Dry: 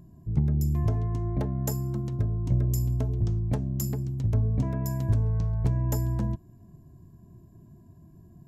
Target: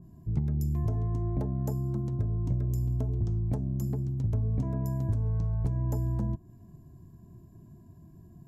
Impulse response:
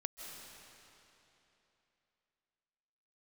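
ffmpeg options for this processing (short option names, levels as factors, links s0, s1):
-filter_complex "[0:a]equalizer=f=540:t=o:w=0.39:g=-2.5,acrossover=split=1100|5500[s0][s1][s2];[s0]acompressor=threshold=0.0562:ratio=4[s3];[s1]acompressor=threshold=0.00112:ratio=4[s4];[s2]acompressor=threshold=0.00562:ratio=4[s5];[s3][s4][s5]amix=inputs=3:normalize=0,adynamicequalizer=threshold=0.002:dfrequency=1600:dqfactor=0.7:tfrequency=1600:tqfactor=0.7:attack=5:release=100:ratio=0.375:range=3:mode=cutabove:tftype=highshelf"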